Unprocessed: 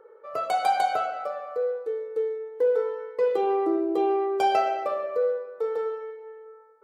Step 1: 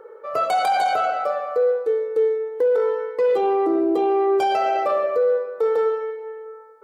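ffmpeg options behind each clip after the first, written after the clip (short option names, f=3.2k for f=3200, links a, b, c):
-af "alimiter=limit=-22.5dB:level=0:latency=1:release=11,volume=9dB"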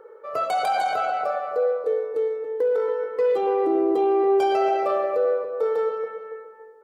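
-filter_complex "[0:a]asplit=2[a][b];[b]adelay=280,lowpass=f=1.4k:p=1,volume=-6dB,asplit=2[c][d];[d]adelay=280,lowpass=f=1.4k:p=1,volume=0.39,asplit=2[e][f];[f]adelay=280,lowpass=f=1.4k:p=1,volume=0.39,asplit=2[g][h];[h]adelay=280,lowpass=f=1.4k:p=1,volume=0.39,asplit=2[i][j];[j]adelay=280,lowpass=f=1.4k:p=1,volume=0.39[k];[a][c][e][g][i][k]amix=inputs=6:normalize=0,volume=-3.5dB"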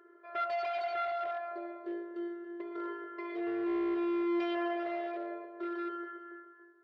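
-af "afftfilt=real='hypot(re,im)*cos(PI*b)':imag='0':win_size=512:overlap=0.75,aeval=exprs='clip(val(0),-1,0.0631)':c=same,highpass=160,equalizer=f=190:t=q:w=4:g=-7,equalizer=f=270:t=q:w=4:g=-10,equalizer=f=740:t=q:w=4:g=-4,equalizer=f=2k:t=q:w=4:g=7,lowpass=f=4.1k:w=0.5412,lowpass=f=4.1k:w=1.3066,volume=-4.5dB"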